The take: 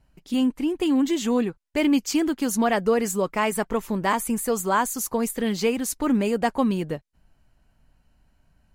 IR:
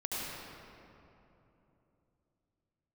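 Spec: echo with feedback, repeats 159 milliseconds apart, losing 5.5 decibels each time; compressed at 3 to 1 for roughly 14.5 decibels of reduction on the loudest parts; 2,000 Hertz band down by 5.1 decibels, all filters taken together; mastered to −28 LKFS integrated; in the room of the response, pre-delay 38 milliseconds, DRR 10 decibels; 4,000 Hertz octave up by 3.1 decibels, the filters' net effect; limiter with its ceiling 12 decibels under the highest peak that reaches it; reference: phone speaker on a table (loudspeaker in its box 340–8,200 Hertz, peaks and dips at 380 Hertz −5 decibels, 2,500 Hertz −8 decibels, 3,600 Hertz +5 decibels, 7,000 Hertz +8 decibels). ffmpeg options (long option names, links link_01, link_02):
-filter_complex "[0:a]equalizer=frequency=2000:width_type=o:gain=-5.5,equalizer=frequency=4000:width_type=o:gain=5,acompressor=threshold=-38dB:ratio=3,alimiter=level_in=11.5dB:limit=-24dB:level=0:latency=1,volume=-11.5dB,aecho=1:1:159|318|477|636|795|954|1113:0.531|0.281|0.149|0.079|0.0419|0.0222|0.0118,asplit=2[link_01][link_02];[1:a]atrim=start_sample=2205,adelay=38[link_03];[link_02][link_03]afir=irnorm=-1:irlink=0,volume=-15dB[link_04];[link_01][link_04]amix=inputs=2:normalize=0,highpass=frequency=340:width=0.5412,highpass=frequency=340:width=1.3066,equalizer=frequency=380:width_type=q:width=4:gain=-5,equalizer=frequency=2500:width_type=q:width=4:gain=-8,equalizer=frequency=3600:width_type=q:width=4:gain=5,equalizer=frequency=7000:width_type=q:width=4:gain=8,lowpass=frequency=8200:width=0.5412,lowpass=frequency=8200:width=1.3066,volume=16.5dB"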